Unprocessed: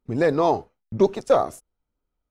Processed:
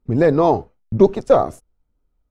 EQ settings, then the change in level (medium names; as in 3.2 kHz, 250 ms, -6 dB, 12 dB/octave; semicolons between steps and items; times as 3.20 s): tilt EQ -2 dB/octave; +3.0 dB